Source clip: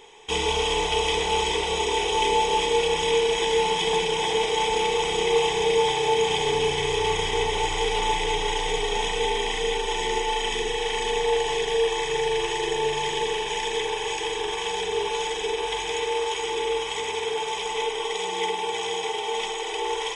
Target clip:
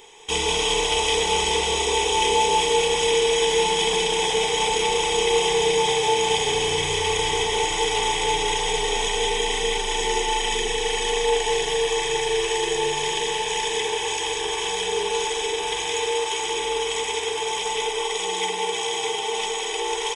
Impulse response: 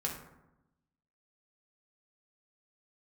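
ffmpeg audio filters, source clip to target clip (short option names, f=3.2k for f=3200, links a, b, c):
-filter_complex "[0:a]highshelf=f=5.7k:g=10.5,asplit=2[a][b];[b]aecho=0:1:191:0.501[c];[a][c]amix=inputs=2:normalize=0"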